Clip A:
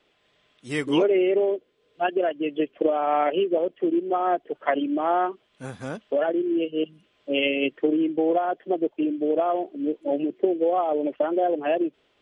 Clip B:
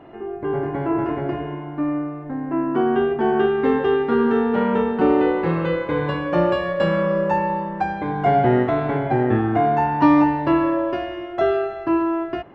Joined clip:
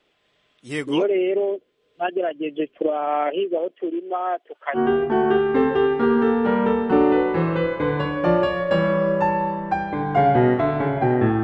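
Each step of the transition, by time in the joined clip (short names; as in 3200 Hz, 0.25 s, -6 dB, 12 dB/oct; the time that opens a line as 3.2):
clip A
3.08–4.79 HPF 150 Hz -> 860 Hz
4.76 switch to clip B from 2.85 s, crossfade 0.06 s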